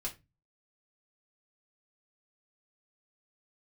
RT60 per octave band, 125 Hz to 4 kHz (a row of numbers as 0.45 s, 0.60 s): 0.50 s, 0.40 s, 0.25 s, 0.20 s, 0.20 s, 0.20 s